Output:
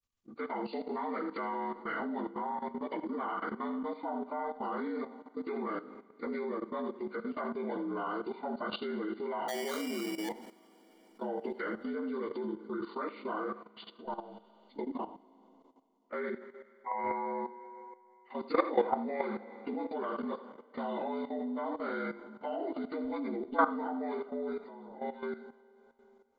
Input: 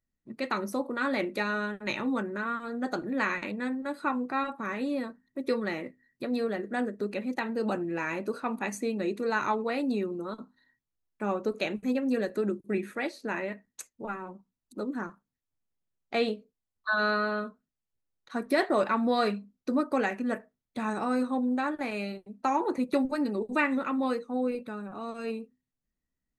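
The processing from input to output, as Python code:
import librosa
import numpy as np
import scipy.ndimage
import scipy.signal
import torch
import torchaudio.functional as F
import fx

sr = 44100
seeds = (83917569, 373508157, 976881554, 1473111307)

p1 = fx.partial_stretch(x, sr, pct=76)
p2 = p1 + fx.echo_single(p1, sr, ms=81, db=-11.5, dry=0)
p3 = fx.sample_hold(p2, sr, seeds[0], rate_hz=2600.0, jitter_pct=0, at=(9.48, 10.29))
p4 = fx.peak_eq(p3, sr, hz=170.0, db=-8.0, octaves=1.4)
p5 = fx.rev_schroeder(p4, sr, rt60_s=3.5, comb_ms=33, drr_db=15.0)
p6 = fx.level_steps(p5, sr, step_db=13)
y = p6 * 10.0 ** (3.5 / 20.0)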